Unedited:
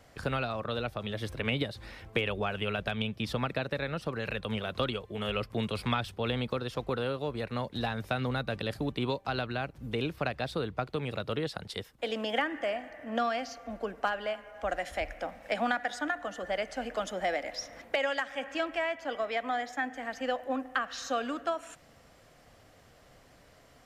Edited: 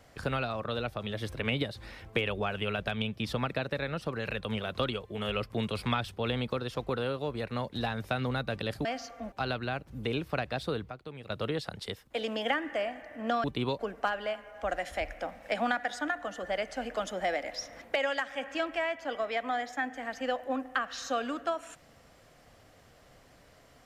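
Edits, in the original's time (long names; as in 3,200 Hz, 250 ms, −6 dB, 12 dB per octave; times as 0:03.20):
0:08.85–0:09.20: swap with 0:13.32–0:13.79
0:10.78–0:11.18: clip gain −10 dB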